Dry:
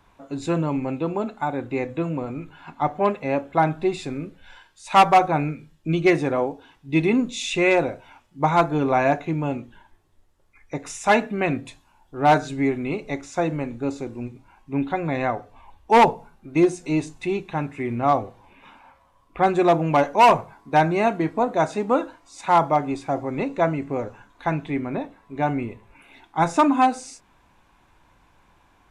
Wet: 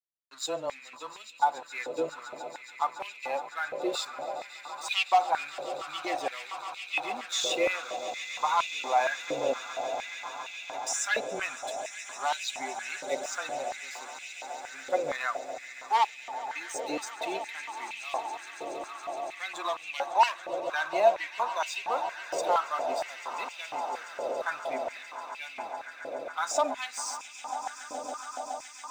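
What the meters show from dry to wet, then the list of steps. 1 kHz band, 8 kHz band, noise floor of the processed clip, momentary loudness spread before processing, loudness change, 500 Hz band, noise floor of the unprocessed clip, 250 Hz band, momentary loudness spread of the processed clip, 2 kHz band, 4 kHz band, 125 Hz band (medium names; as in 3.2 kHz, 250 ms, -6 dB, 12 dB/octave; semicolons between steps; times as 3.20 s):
-8.0 dB, +3.5 dB, -48 dBFS, 15 LU, -9.5 dB, -9.5 dB, -60 dBFS, -21.5 dB, 12 LU, -5.0 dB, +0.5 dB, under -30 dB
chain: expander on every frequency bin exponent 1.5; gate with hold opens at -46 dBFS; high-order bell 4.9 kHz +11 dB; compression, threshold -21 dBFS, peak gain reduction 11 dB; peak limiter -21 dBFS, peak gain reduction 9 dB; frequency shift -13 Hz; crossover distortion -49 dBFS; echo with a slow build-up 140 ms, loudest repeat 8, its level -16.5 dB; step-sequenced high-pass 4.3 Hz 530–2500 Hz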